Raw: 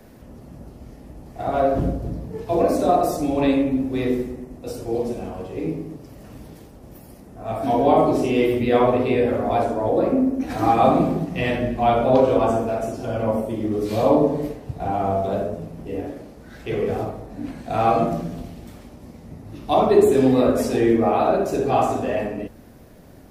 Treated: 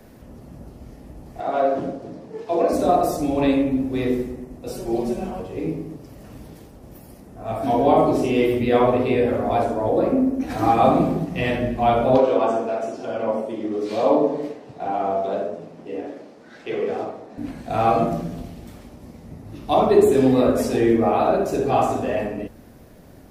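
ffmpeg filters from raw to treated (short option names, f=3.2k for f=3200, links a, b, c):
-filter_complex "[0:a]asettb=1/sr,asplit=3[a][b][c];[a]atrim=end=1.404[d];[b]atrim=start=1.4:end=2.73,asetpts=PTS-STARTPTS,afade=t=in:d=0.004:c=qsin,afade=t=out:st=1.326:d=0.004:c=qsin,highpass=280,lowpass=7.3k[e];[c]atrim=start=2.726[f];[d][e]acrossfade=d=0.004:c1=hsin:c2=qsin[g];[g][f]acrossfade=d=0.004:c1=qsin:c2=hsin,asettb=1/sr,asplit=3[h][i][j];[h]atrim=end=4.714[k];[i]atrim=start=4.71:end=5.4,asetpts=PTS-STARTPTS,afade=t=in:d=0.004:c=qsin,afade=t=out:st=0.686:d=0.004:c=qsin,aecho=1:1:5.3:0.92,atrim=end_sample=30429[l];[j]atrim=start=5.396[m];[k][l]acrossfade=d=0.004:c1=hsin:c2=qsin[n];[n][m]acrossfade=d=0.004:c1=qsin:c2=hsin,asettb=1/sr,asplit=3[o][p][q];[o]atrim=end=12.184[r];[p]atrim=start=12.18:end=17.38,asetpts=PTS-STARTPTS,afade=t=in:d=0.004:c=qsin,afade=t=out:st=5.196:d=0.004:c=qsin,highpass=270,lowpass=6.4k[s];[q]atrim=start=17.376[t];[r][s]acrossfade=d=0.004:c1=hsin:c2=qsin[u];[u][t]acrossfade=d=0.004:c1=qsin:c2=hsin"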